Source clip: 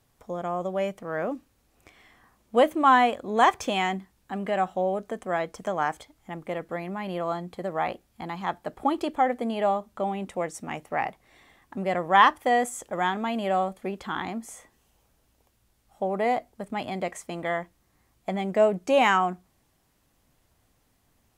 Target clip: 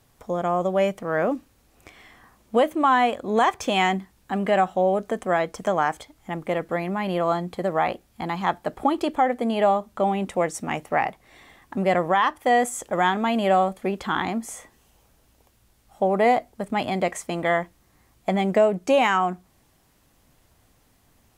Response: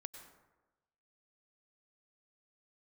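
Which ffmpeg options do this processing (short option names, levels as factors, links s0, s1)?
-af "alimiter=limit=0.158:level=0:latency=1:release=473,volume=2.11"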